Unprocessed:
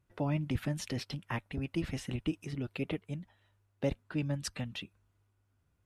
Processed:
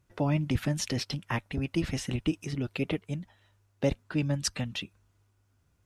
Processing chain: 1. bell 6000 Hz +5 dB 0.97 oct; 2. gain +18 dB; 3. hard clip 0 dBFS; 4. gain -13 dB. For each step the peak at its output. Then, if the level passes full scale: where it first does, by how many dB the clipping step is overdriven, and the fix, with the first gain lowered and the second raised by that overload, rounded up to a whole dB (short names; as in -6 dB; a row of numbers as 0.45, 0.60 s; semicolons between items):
-20.0, -2.0, -2.0, -15.0 dBFS; no overload